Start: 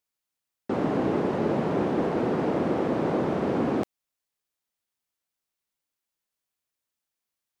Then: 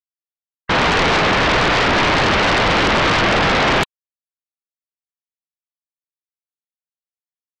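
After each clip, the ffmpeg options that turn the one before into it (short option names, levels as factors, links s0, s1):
-af "afftfilt=real='re*gte(hypot(re,im),0.00708)':imag='im*gte(hypot(re,im),0.00708)':win_size=1024:overlap=0.75,crystalizer=i=7:c=0,aeval=exprs='0.251*sin(PI/2*7.08*val(0)/0.251)':c=same"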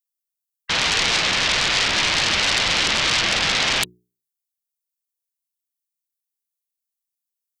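-filter_complex "[0:a]bandreject=f=60:t=h:w=6,bandreject=f=120:t=h:w=6,bandreject=f=180:t=h:w=6,bandreject=f=240:t=h:w=6,bandreject=f=300:t=h:w=6,bandreject=f=360:t=h:w=6,bandreject=f=420:t=h:w=6,acrossover=split=260|570|1500[s0][s1][s2][s3];[s1]flanger=delay=8.3:depth=3.3:regen=-39:speed=0.93:shape=triangular[s4];[s3]crystalizer=i=8:c=0[s5];[s0][s4][s2][s5]amix=inputs=4:normalize=0,volume=0.299"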